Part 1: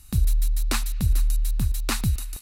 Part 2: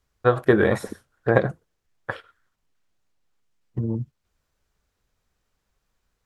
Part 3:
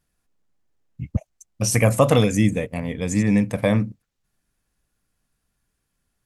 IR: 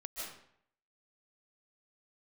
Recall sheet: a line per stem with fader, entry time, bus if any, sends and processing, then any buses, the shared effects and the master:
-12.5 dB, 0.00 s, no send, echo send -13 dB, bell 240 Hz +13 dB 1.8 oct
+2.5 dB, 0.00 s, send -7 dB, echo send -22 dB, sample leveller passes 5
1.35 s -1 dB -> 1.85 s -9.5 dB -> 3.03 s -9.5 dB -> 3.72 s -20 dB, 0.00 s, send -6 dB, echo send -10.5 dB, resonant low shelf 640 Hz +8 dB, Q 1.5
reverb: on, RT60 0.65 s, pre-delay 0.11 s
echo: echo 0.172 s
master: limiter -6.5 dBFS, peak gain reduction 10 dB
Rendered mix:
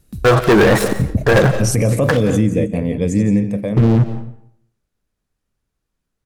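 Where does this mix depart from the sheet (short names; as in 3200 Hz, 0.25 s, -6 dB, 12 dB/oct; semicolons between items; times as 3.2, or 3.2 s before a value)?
stem 3 -1.0 dB -> +7.0 dB; reverb return -7.0 dB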